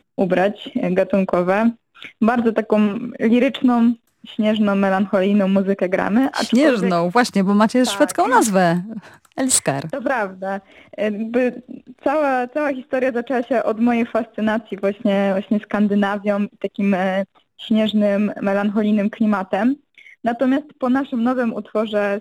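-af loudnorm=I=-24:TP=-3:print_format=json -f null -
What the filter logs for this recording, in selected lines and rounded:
"input_i" : "-19.1",
"input_tp" : "-1.1",
"input_lra" : "3.8",
"input_thresh" : "-29.3",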